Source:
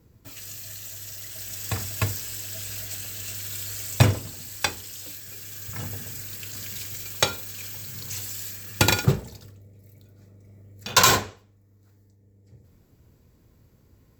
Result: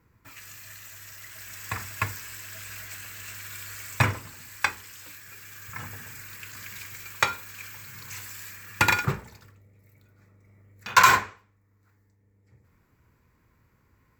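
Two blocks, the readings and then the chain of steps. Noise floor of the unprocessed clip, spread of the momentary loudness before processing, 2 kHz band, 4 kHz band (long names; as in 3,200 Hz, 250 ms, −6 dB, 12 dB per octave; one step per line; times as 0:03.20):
−59 dBFS, 16 LU, +3.5 dB, −7.0 dB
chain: flat-topped bell 1,500 Hz +12 dB
level −7.5 dB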